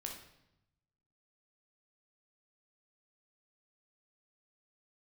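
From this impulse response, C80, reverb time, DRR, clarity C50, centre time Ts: 8.5 dB, 0.85 s, 1.0 dB, 5.0 dB, 30 ms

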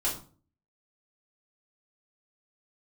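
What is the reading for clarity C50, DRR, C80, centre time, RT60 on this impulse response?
8.0 dB, -8.0 dB, 13.0 dB, 27 ms, 0.40 s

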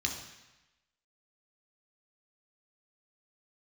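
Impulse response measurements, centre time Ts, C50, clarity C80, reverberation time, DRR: 31 ms, 6.0 dB, 8.5 dB, 1.0 s, 0.5 dB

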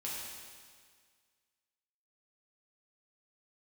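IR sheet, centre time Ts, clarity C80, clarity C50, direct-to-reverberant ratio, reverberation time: 110 ms, 0.5 dB, -1.0 dB, -6.5 dB, 1.8 s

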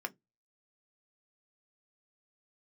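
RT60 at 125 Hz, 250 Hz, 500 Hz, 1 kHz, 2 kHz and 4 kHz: 0.35 s, 0.20 s, 0.20 s, 0.15 s, 0.10 s, 0.10 s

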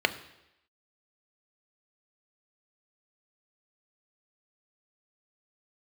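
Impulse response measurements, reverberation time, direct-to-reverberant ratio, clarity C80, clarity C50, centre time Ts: 0.85 s, 9.0 dB, 17.0 dB, 15.0 dB, 7 ms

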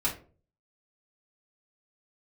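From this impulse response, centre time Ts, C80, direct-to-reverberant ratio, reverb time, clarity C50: 19 ms, 16.0 dB, -6.5 dB, 0.40 s, 10.5 dB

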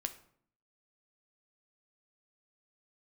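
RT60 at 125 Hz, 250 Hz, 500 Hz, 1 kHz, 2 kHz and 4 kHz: 0.75 s, 0.80 s, 0.65 s, 0.60 s, 0.50 s, 0.40 s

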